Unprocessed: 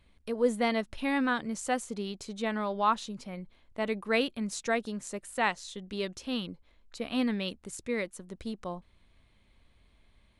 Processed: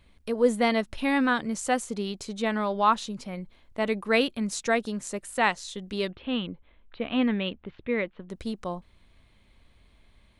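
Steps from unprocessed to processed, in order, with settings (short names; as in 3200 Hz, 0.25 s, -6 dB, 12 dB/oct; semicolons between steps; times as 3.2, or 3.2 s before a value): 6.1–8.3 steep low-pass 3500 Hz 48 dB/oct; gain +4.5 dB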